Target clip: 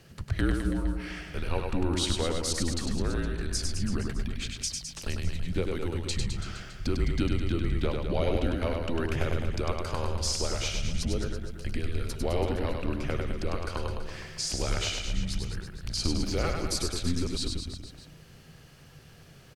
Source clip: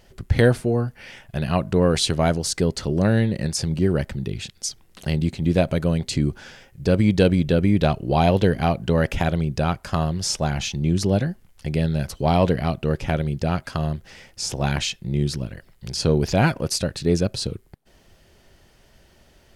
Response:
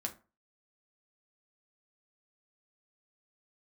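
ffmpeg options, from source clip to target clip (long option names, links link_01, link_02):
-af "acompressor=threshold=-33dB:ratio=2,aecho=1:1:100|210|331|464.1|610.5:0.631|0.398|0.251|0.158|0.1,afreqshift=-170"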